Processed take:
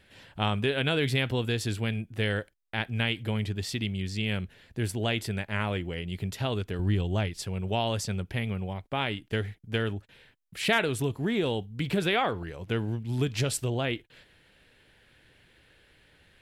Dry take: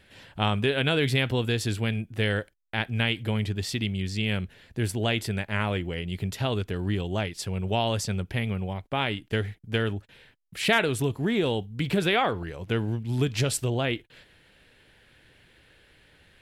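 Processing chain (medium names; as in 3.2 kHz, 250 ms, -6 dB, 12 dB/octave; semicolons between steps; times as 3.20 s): 6.79–7.43 s: bass shelf 110 Hz +10.5 dB; trim -2.5 dB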